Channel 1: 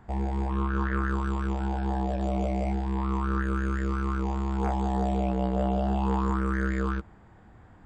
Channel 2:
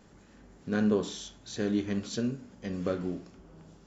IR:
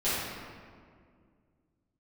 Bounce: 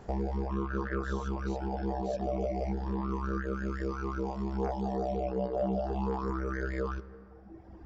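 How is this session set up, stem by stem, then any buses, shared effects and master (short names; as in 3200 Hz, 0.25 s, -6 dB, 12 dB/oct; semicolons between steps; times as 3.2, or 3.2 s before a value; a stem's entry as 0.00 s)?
+0.5 dB, 0.00 s, send -20 dB, EQ curve 230 Hz 0 dB, 490 Hz +10 dB, 870 Hz 0 dB, 3800 Hz -3 dB, 5500 Hz +10 dB, 8000 Hz -17 dB
-18.0 dB, 0.00 s, no send, fast leveller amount 50%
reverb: on, RT60 2.1 s, pre-delay 5 ms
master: reverb removal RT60 1.5 s; compressor 2:1, threshold -33 dBFS, peak gain reduction 8 dB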